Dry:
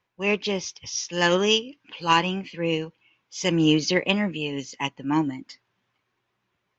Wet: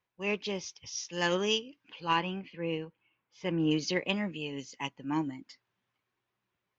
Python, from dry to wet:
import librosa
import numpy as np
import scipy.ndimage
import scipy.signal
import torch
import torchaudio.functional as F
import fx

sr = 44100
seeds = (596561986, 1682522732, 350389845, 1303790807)

y = fx.lowpass(x, sr, hz=fx.line((2.0, 3700.0), (3.7, 2000.0)), slope=12, at=(2.0, 3.7), fade=0.02)
y = F.gain(torch.from_numpy(y), -8.5).numpy()